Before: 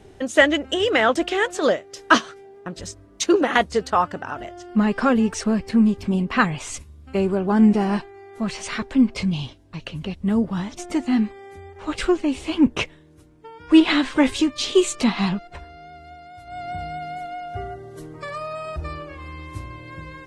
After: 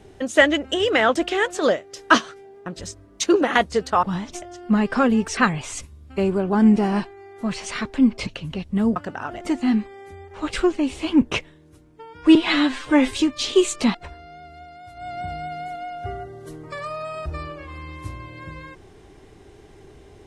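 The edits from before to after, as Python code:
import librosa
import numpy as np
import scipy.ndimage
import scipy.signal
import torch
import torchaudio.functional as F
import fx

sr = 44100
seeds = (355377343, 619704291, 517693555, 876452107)

y = fx.edit(x, sr, fx.swap(start_s=4.03, length_s=0.45, other_s=10.47, other_length_s=0.39),
    fx.cut(start_s=5.43, length_s=0.91),
    fx.cut(start_s=9.24, length_s=0.54),
    fx.stretch_span(start_s=13.8, length_s=0.51, factor=1.5),
    fx.cut(start_s=15.14, length_s=0.31), tone=tone)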